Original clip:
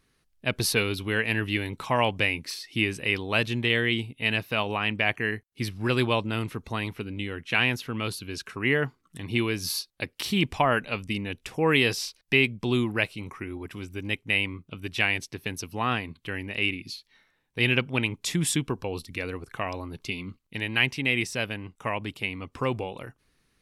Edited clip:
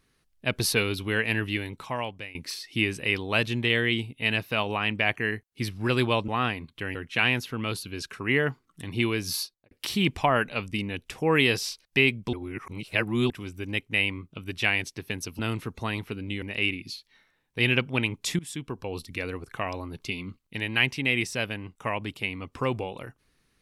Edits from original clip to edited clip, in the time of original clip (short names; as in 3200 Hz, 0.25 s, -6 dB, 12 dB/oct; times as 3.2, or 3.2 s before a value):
1.34–2.35 fade out, to -21 dB
6.28–7.31 swap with 15.75–16.42
9.74–10.07 studio fade out
12.69–13.66 reverse
18.39–19.04 fade in, from -21 dB